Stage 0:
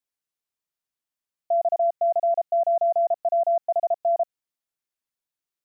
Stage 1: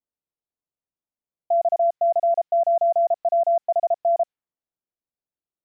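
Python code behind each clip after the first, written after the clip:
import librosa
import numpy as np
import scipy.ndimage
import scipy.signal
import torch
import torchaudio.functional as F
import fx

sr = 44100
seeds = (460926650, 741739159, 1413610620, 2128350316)

y = fx.env_lowpass(x, sr, base_hz=720.0, full_db=-18.0)
y = F.gain(torch.from_numpy(y), 2.0).numpy()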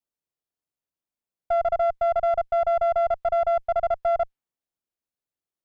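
y = fx.diode_clip(x, sr, knee_db=-21.0)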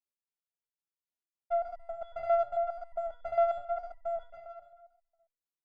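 y = fx.echo_feedback(x, sr, ms=142, feedback_pct=58, wet_db=-11)
y = fx.resonator_held(y, sr, hz=7.4, low_hz=82.0, high_hz=980.0)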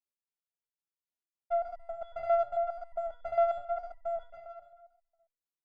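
y = x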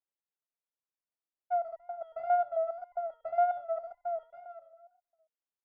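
y = fx.bandpass_q(x, sr, hz=660.0, q=0.7)
y = fx.wow_flutter(y, sr, seeds[0], rate_hz=2.1, depth_cents=78.0)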